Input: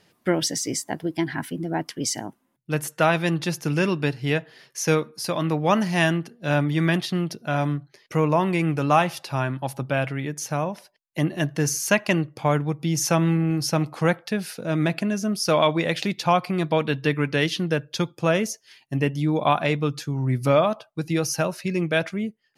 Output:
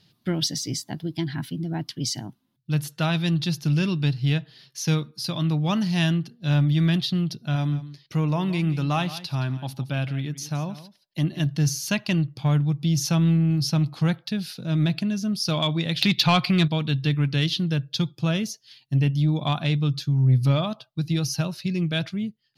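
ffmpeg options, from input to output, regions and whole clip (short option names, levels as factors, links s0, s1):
-filter_complex "[0:a]asettb=1/sr,asplit=3[s0][s1][s2];[s0]atrim=end=7.554[s3];[s1]atrim=start=7.55:end=11.46,asetpts=PTS-STARTPTS,afade=t=in:d=0.004:c=qsin,afade=t=out:st=3.906:d=0.004:c=qsin,equalizer=f=130:w=3:g=-5.5,aecho=1:1:171:0.168,atrim=end_sample=172431[s4];[s2]atrim=start=11.456[s5];[s3][s4]acrossfade=d=0.004:c1=hsin:c2=qsin[s6];[s6][s5]acrossfade=d=0.004:c1=qsin:c2=hsin,asettb=1/sr,asplit=3[s7][s8][s9];[s7]atrim=end=16.014[s10];[s8]atrim=start=16.01:end=16.68,asetpts=PTS-STARTPTS,afade=t=in:d=0.004:c=qsin,afade=t=out:st=0.666:d=0.004:c=qsin,equalizer=f=2200:w=0.68:g=9,acontrast=24[s11];[s9]atrim=start=16.676[s12];[s10][s11]acrossfade=d=0.004:c1=hsin:c2=qsin[s13];[s13][s12]acrossfade=d=0.004:c1=qsin:c2=hsin,equalizer=f=125:t=o:w=1:g=10,equalizer=f=500:t=o:w=1:g=-9,equalizer=f=1000:t=o:w=1:g=-4,equalizer=f=2000:t=o:w=1:g=-7,equalizer=f=4000:t=o:w=1:g=11,equalizer=f=8000:t=o:w=1:g=-8,acontrast=53,volume=0.398"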